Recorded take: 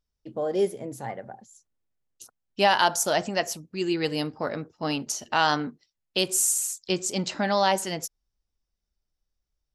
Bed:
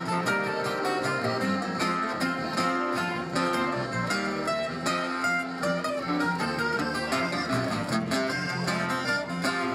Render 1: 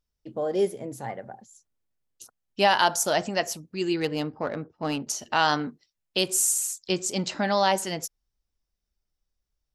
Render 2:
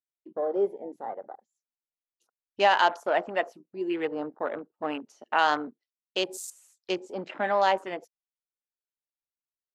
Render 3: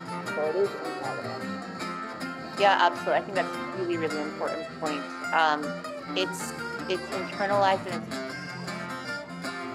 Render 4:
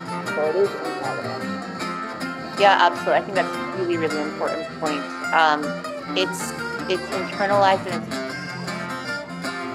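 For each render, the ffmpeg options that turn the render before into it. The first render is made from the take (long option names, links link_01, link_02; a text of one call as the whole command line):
ffmpeg -i in.wav -filter_complex "[0:a]asettb=1/sr,asplit=3[link_01][link_02][link_03];[link_01]atrim=end=4.004[link_04];[link_02]atrim=start=4:end=5.07,asetpts=PTS-STARTPTS,afade=type=in:duration=0.004:curve=qsin,afade=type=out:start_time=1.066:duration=0.004:curve=qsin,adynamicsmooth=sensitivity=2:basefreq=2400[link_05];[link_03]atrim=start=5.066[link_06];[link_04][link_05]acrossfade=duration=0.004:curve1=hsin:curve2=qsin[link_07];[link_07][link_06]acrossfade=duration=0.004:curve1=qsin:curve2=hsin" out.wav
ffmpeg -i in.wav -filter_complex "[0:a]acrossover=split=280 3400:gain=0.0631 1 0.178[link_01][link_02][link_03];[link_01][link_02][link_03]amix=inputs=3:normalize=0,afwtdn=0.0126" out.wav
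ffmpeg -i in.wav -i bed.wav -filter_complex "[1:a]volume=-7dB[link_01];[0:a][link_01]amix=inputs=2:normalize=0" out.wav
ffmpeg -i in.wav -af "volume=6dB,alimiter=limit=-3dB:level=0:latency=1" out.wav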